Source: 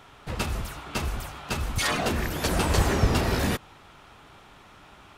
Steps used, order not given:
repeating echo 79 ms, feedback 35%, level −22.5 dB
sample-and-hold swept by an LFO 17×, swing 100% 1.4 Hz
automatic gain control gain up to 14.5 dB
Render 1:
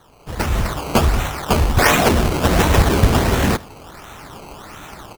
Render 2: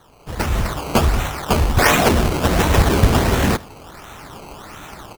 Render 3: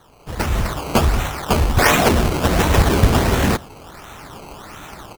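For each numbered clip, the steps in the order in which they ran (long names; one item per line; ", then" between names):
sample-and-hold swept by an LFO, then automatic gain control, then repeating echo
automatic gain control, then sample-and-hold swept by an LFO, then repeating echo
automatic gain control, then repeating echo, then sample-and-hold swept by an LFO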